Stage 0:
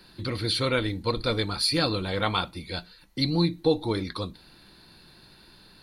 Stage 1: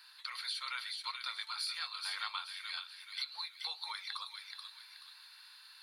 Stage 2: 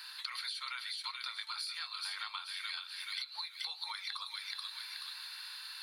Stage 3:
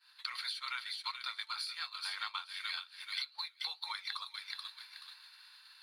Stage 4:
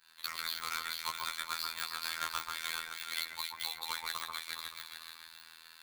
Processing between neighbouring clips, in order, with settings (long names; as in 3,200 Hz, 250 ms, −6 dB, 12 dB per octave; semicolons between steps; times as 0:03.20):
Butterworth high-pass 1,000 Hz 36 dB per octave; downward compressor 4 to 1, threshold −36 dBFS, peak gain reduction 12.5 dB; on a send: delay with a high-pass on its return 429 ms, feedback 35%, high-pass 1,900 Hz, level −3.5 dB; on the sum: level −2.5 dB
high-pass filter 740 Hz 6 dB per octave; downward compressor 10 to 1, threshold −48 dBFS, peak gain reduction 14.5 dB; level +10.5 dB
high-shelf EQ 5,700 Hz −6 dB; downward expander −38 dBFS; in parallel at −11 dB: dead-zone distortion −54.5 dBFS; on the sum: level +3.5 dB
each half-wave held at its own peak; delay that swaps between a low-pass and a high-pass 136 ms, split 1,900 Hz, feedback 63%, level −3 dB; phases set to zero 81.6 Hz